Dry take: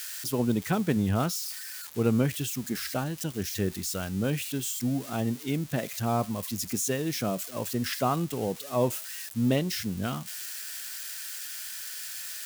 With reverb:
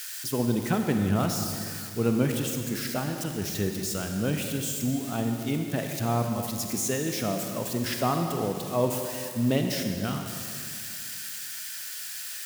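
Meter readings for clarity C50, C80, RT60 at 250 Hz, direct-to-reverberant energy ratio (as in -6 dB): 4.5 dB, 5.5 dB, 2.4 s, 4.0 dB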